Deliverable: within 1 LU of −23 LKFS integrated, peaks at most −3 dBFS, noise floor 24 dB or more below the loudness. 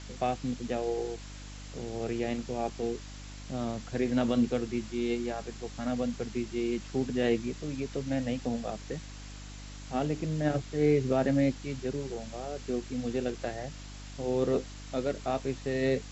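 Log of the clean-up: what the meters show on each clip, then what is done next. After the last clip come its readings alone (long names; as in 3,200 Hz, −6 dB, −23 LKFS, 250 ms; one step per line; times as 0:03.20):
mains hum 50 Hz; hum harmonics up to 300 Hz; level of the hum −42 dBFS; background noise floor −44 dBFS; target noise floor −56 dBFS; integrated loudness −32.0 LKFS; sample peak −14.5 dBFS; target loudness −23.0 LKFS
→ hum removal 50 Hz, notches 6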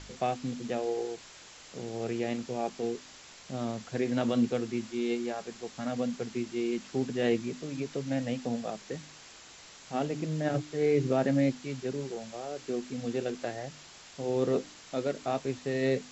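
mains hum none found; background noise floor −52 dBFS; target noise floor −57 dBFS
→ broadband denoise 6 dB, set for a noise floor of −52 dBFS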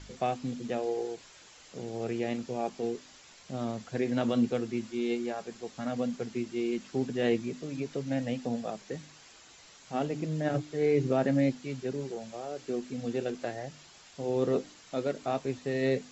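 background noise floor −55 dBFS; target noise floor −57 dBFS
→ broadband denoise 6 dB, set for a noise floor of −55 dBFS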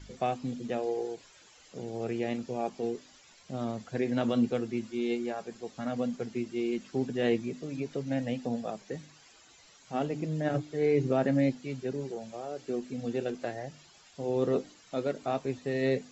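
background noise floor −58 dBFS; integrated loudness −32.5 LKFS; sample peak −15.0 dBFS; target loudness −23.0 LKFS
→ level +9.5 dB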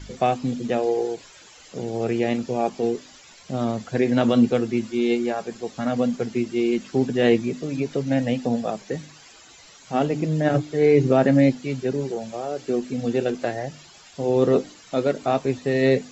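integrated loudness −23.0 LKFS; sample peak −5.5 dBFS; background noise floor −49 dBFS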